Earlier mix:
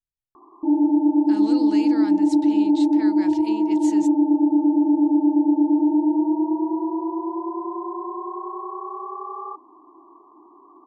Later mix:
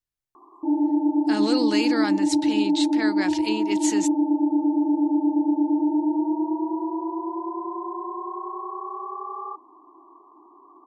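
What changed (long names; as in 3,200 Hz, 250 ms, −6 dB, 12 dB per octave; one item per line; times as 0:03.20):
speech +11.0 dB
master: add low-shelf EQ 220 Hz −10 dB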